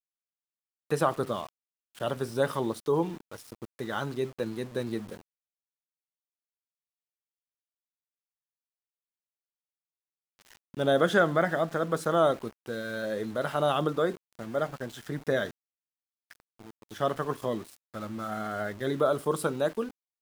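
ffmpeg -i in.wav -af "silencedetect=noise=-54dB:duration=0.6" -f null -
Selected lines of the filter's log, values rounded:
silence_start: 0.00
silence_end: 0.90 | silence_duration: 0.90
silence_start: 5.21
silence_end: 10.39 | silence_duration: 5.18
silence_start: 15.51
silence_end: 16.30 | silence_duration: 0.80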